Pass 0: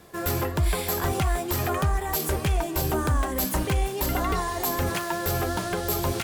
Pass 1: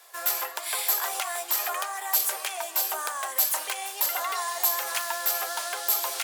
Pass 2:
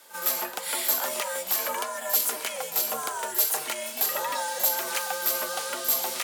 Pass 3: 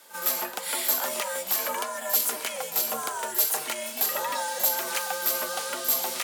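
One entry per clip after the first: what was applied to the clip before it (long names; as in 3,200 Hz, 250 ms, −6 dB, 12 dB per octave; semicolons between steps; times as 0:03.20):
high-pass filter 660 Hz 24 dB per octave; high-shelf EQ 3,300 Hz +8 dB; level −2 dB
echo ahead of the sound 39 ms −12 dB; frequency shifter −160 Hz
parametric band 220 Hz +3.5 dB 0.45 octaves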